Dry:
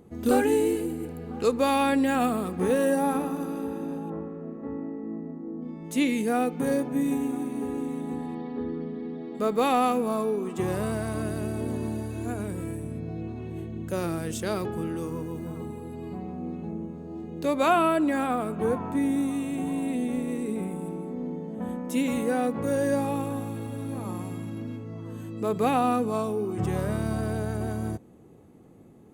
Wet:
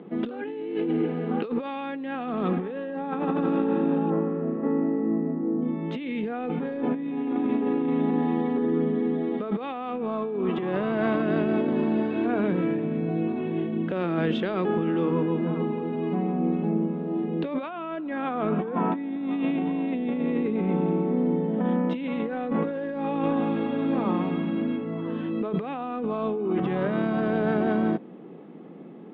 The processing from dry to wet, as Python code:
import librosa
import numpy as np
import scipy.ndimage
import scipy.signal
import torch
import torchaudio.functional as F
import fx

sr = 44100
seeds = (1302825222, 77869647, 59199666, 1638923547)

y = scipy.signal.sosfilt(scipy.signal.cheby1(4, 1.0, [170.0, 3400.0], 'bandpass', fs=sr, output='sos'), x)
y = fx.over_compress(y, sr, threshold_db=-33.0, ratio=-1.0)
y = y * librosa.db_to_amplitude(6.5)